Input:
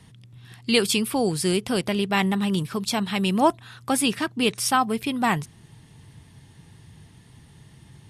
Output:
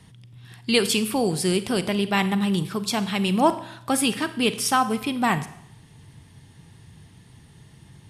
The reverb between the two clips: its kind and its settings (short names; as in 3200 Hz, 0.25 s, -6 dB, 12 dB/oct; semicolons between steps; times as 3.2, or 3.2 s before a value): Schroeder reverb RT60 0.73 s, combs from 33 ms, DRR 12 dB